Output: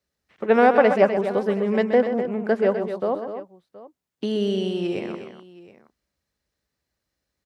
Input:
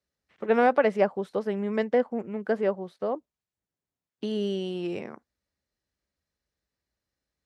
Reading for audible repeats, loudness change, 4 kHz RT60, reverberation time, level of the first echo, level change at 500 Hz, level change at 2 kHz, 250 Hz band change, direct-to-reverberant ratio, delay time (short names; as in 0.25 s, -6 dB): 3, +6.0 dB, none, none, -9.5 dB, +6.0 dB, +6.0 dB, +6.0 dB, none, 0.128 s